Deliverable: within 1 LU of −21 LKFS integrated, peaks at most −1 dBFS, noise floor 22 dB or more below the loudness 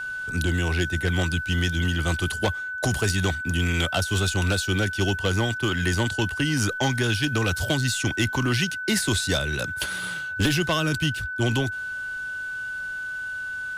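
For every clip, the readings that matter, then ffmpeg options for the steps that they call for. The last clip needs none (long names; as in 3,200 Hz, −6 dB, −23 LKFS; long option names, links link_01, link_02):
interfering tone 1,500 Hz; level of the tone −29 dBFS; integrated loudness −25.0 LKFS; sample peak −13.0 dBFS; target loudness −21.0 LKFS
→ -af "bandreject=frequency=1500:width=30"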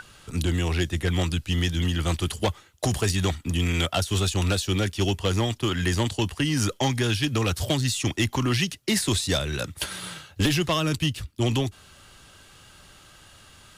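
interfering tone none found; integrated loudness −25.5 LKFS; sample peak −14.5 dBFS; target loudness −21.0 LKFS
→ -af "volume=4.5dB"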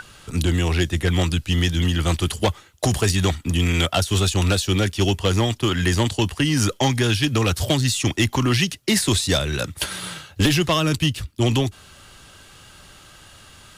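integrated loudness −21.0 LKFS; sample peak −10.0 dBFS; background noise floor −47 dBFS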